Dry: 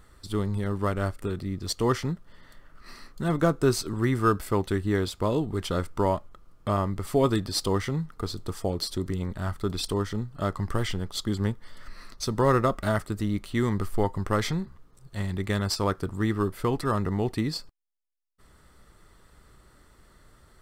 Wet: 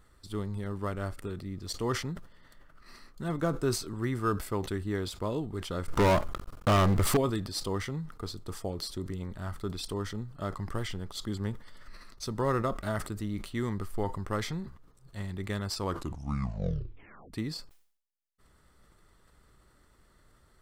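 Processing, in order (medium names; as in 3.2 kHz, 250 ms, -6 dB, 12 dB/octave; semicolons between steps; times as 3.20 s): 5.88–7.17 s: waveshaping leveller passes 5; 15.80 s: tape stop 1.53 s; decay stretcher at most 100 dB/s; trim -7 dB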